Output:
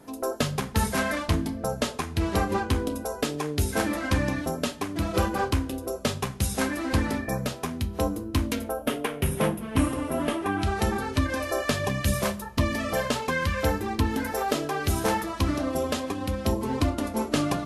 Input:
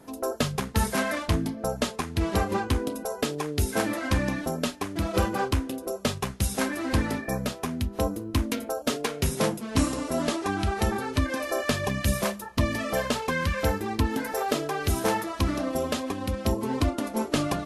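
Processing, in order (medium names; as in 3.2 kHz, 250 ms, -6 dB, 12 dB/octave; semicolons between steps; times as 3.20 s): 8.66–10.62 s: high-order bell 5.5 kHz -12 dB 1.2 oct; reverberation RT60 0.55 s, pre-delay 7 ms, DRR 12 dB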